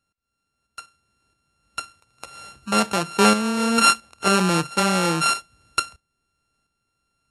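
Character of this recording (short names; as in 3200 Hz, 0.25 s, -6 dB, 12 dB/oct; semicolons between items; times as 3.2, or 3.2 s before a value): a buzz of ramps at a fixed pitch in blocks of 32 samples; tremolo saw up 1.5 Hz, depth 50%; AC-3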